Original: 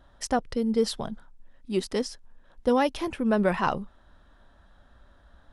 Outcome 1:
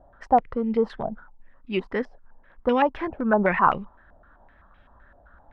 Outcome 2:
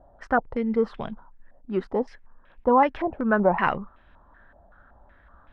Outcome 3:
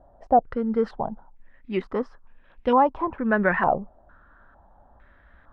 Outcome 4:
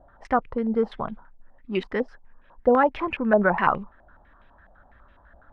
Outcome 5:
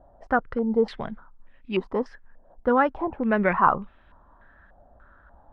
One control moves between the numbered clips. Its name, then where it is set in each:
low-pass on a step sequencer, speed: 7.8, 5.3, 2.2, 12, 3.4 Hertz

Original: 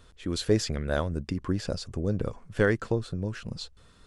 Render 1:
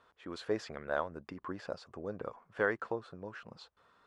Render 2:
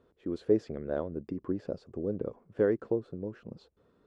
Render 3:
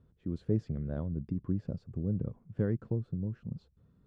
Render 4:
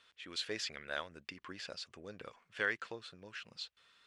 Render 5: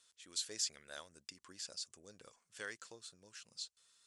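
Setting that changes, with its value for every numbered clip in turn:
resonant band-pass, frequency: 1,000, 390, 150, 2,600, 7,500 Hertz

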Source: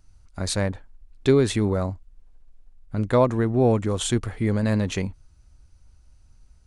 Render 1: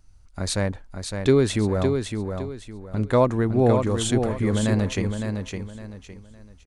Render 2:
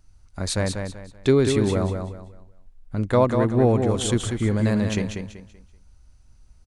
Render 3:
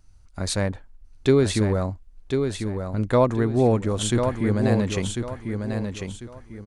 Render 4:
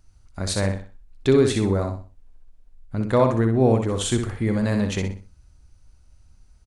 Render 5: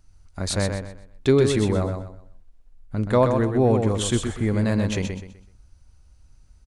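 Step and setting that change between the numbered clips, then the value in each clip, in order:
repeating echo, delay time: 560, 191, 1,046, 62, 126 milliseconds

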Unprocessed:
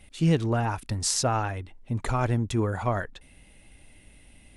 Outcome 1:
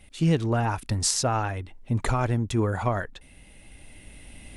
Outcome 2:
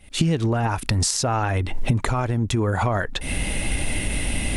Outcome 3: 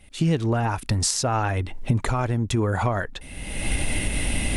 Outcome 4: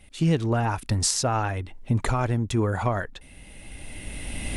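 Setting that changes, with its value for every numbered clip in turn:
camcorder AGC, rising by: 5.4, 90, 36, 14 dB per second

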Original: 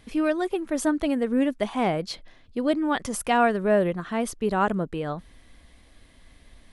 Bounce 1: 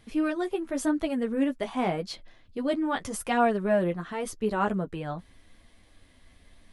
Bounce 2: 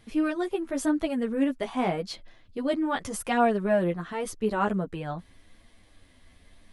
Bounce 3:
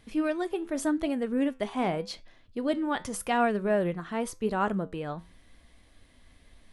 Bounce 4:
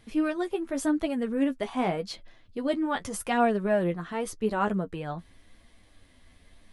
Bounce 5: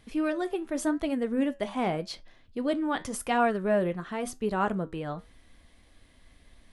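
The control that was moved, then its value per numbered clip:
flanger, regen: −22, 0, +78, +28, −74%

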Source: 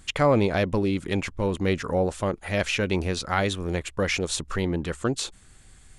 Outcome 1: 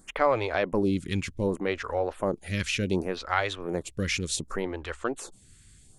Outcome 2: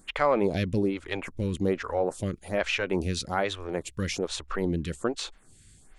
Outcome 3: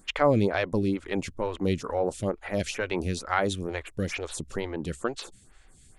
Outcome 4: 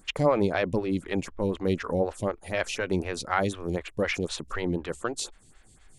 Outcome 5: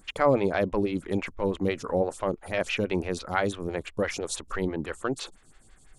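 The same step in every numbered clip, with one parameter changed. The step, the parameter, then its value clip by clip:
phaser with staggered stages, speed: 0.67, 1.2, 2.2, 4, 6 Hertz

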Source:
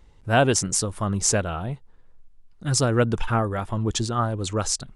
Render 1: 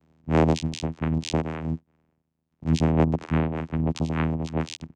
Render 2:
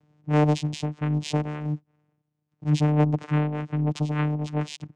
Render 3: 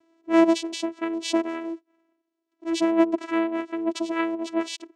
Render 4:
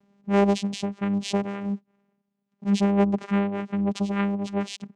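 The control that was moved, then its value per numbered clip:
channel vocoder, frequency: 80, 150, 330, 200 Hertz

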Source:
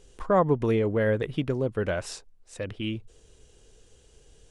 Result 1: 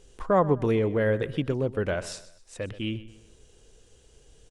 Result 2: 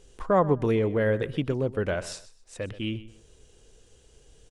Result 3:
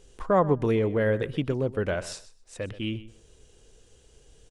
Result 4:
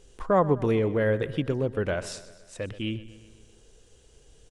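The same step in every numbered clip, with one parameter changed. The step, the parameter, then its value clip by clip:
repeating echo, feedback: 38, 25, 16, 57%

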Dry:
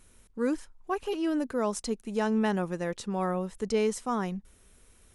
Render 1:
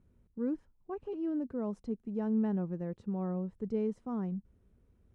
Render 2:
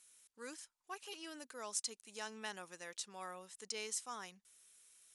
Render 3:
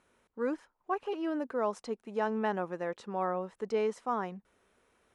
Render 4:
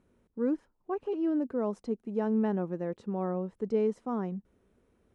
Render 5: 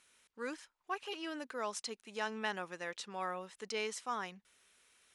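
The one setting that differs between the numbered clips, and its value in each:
resonant band-pass, frequency: 120, 7,400, 860, 300, 2,900 Hertz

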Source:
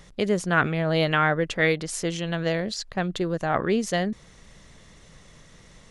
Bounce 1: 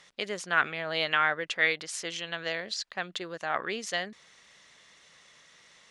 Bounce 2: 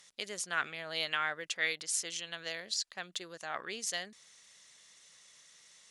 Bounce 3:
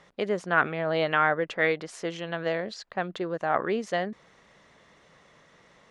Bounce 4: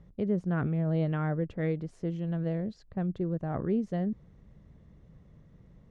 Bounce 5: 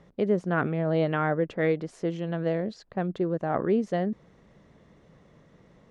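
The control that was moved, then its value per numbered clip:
resonant band-pass, frequency: 2,900, 7,900, 970, 100, 330 Hertz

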